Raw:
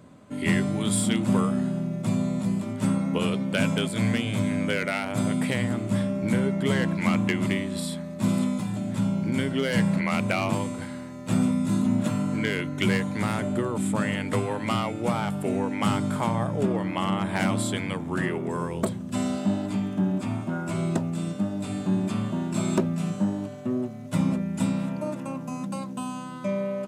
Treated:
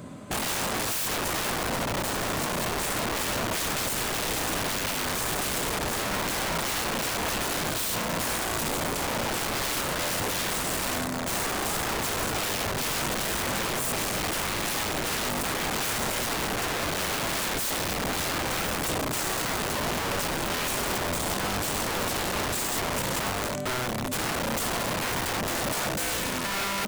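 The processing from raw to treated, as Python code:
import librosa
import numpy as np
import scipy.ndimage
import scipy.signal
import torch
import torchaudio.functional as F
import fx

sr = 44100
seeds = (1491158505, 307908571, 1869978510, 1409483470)

p1 = fx.high_shelf(x, sr, hz=6700.0, db=5.5)
p2 = fx.over_compress(p1, sr, threshold_db=-34.0, ratio=-1.0)
p3 = p1 + F.gain(torch.from_numpy(p2), -2.0).numpy()
y = (np.mod(10.0 ** (24.0 / 20.0) * p3 + 1.0, 2.0) - 1.0) / 10.0 ** (24.0 / 20.0)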